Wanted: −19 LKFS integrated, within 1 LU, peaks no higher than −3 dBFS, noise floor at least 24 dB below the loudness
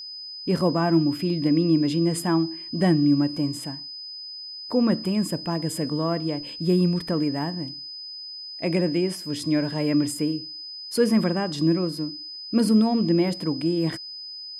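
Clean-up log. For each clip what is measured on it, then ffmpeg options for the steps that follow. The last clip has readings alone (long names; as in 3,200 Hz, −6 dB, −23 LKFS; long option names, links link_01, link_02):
interfering tone 5,000 Hz; level of the tone −35 dBFS; integrated loudness −24.0 LKFS; sample peak −8.5 dBFS; target loudness −19.0 LKFS
→ -af "bandreject=frequency=5000:width=30"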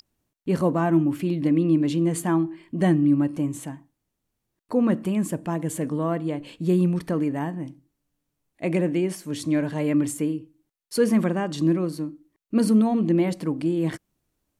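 interfering tone none found; integrated loudness −24.0 LKFS; sample peak −9.0 dBFS; target loudness −19.0 LKFS
→ -af "volume=5dB"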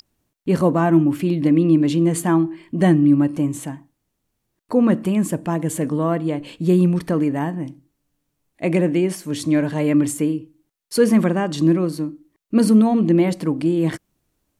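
integrated loudness −19.0 LKFS; sample peak −4.0 dBFS; background noise floor −75 dBFS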